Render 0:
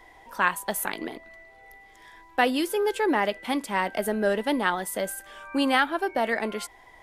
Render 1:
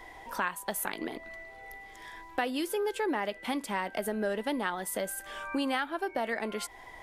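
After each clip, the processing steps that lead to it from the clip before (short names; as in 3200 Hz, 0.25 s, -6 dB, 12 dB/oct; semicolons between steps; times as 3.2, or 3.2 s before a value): compressor 2.5:1, threshold -37 dBFS, peak gain reduction 14 dB; gain +3.5 dB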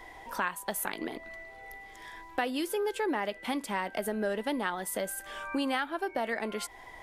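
nothing audible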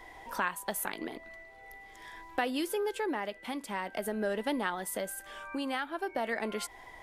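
tremolo triangle 0.5 Hz, depth 45%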